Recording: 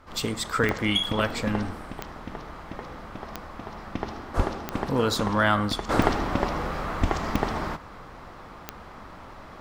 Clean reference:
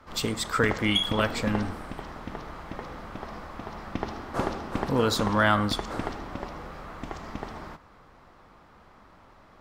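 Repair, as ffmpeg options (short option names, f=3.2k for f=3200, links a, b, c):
-filter_complex "[0:a]adeclick=t=4,asplit=3[a][b][c];[a]afade=t=out:st=4.36:d=0.02[d];[b]highpass=f=140:w=0.5412,highpass=f=140:w=1.3066,afade=t=in:st=4.36:d=0.02,afade=t=out:st=4.48:d=0.02[e];[c]afade=t=in:st=4.48:d=0.02[f];[d][e][f]amix=inputs=3:normalize=0,asplit=3[g][h][i];[g]afade=t=out:st=7:d=0.02[j];[h]highpass=f=140:w=0.5412,highpass=f=140:w=1.3066,afade=t=in:st=7:d=0.02,afade=t=out:st=7.12:d=0.02[k];[i]afade=t=in:st=7.12:d=0.02[l];[j][k][l]amix=inputs=3:normalize=0,agate=range=-21dB:threshold=-36dB,asetnsamples=n=441:p=0,asendcmd='5.89 volume volume -10.5dB',volume=0dB"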